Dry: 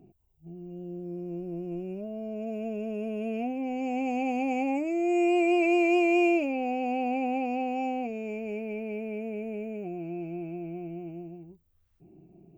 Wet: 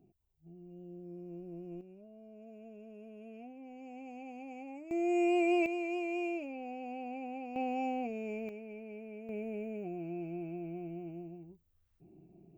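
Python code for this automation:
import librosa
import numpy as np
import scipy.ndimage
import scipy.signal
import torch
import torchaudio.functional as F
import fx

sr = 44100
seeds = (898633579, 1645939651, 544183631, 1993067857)

y = fx.gain(x, sr, db=fx.steps((0.0, -10.0), (1.81, -18.0), (4.91, -5.0), (5.66, -13.0), (7.56, -4.5), (8.49, -12.0), (9.29, -4.5)))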